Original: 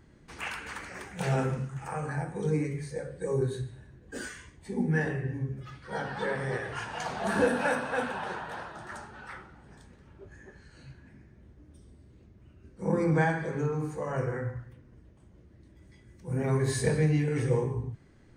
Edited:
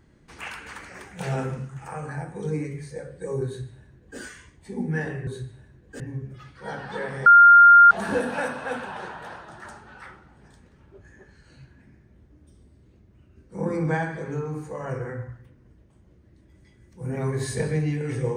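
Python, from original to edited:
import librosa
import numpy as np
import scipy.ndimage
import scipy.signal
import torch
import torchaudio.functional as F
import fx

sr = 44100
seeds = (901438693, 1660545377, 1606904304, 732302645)

y = fx.edit(x, sr, fx.duplicate(start_s=3.46, length_s=0.73, to_s=5.27),
    fx.bleep(start_s=6.53, length_s=0.65, hz=1400.0, db=-7.5), tone=tone)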